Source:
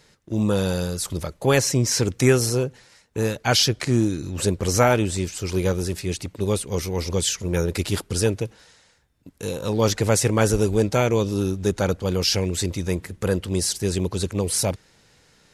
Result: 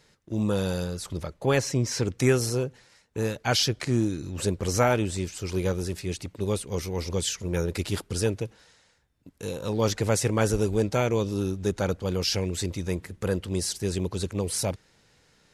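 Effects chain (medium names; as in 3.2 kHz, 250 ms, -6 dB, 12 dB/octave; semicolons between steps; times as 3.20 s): treble shelf 6.9 kHz -2 dB, from 0.84 s -10.5 dB, from 2.18 s -3 dB; trim -4.5 dB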